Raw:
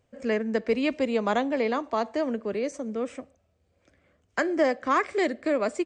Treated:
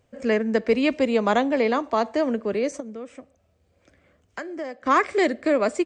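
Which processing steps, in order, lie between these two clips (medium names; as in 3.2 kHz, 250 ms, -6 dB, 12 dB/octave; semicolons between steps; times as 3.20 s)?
2.80–4.86 s: compression 2:1, threshold -46 dBFS, peak gain reduction 15 dB; trim +4.5 dB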